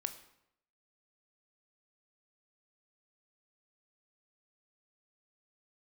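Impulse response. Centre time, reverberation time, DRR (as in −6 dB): 10 ms, 0.75 s, 8.0 dB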